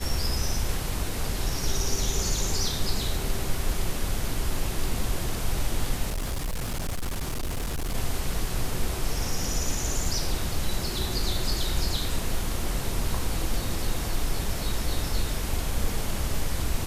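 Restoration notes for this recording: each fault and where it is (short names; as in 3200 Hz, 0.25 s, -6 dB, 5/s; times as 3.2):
6.08–7.95 clipped -25.5 dBFS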